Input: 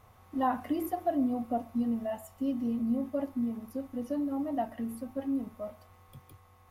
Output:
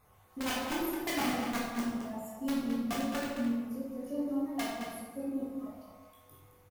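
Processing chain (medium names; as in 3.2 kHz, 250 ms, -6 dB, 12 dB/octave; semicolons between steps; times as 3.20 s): random holes in the spectrogram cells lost 25%; treble shelf 4.9 kHz +7 dB; integer overflow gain 23 dB; echo from a far wall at 37 m, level -6 dB; reverberation RT60 1.0 s, pre-delay 12 ms, DRR -5 dB; trim -8.5 dB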